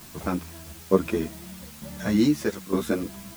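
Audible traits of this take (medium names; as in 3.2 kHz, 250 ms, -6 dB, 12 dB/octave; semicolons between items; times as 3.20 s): tremolo saw down 1.1 Hz, depth 80%; a quantiser's noise floor 8-bit, dither triangular; a shimmering, thickened sound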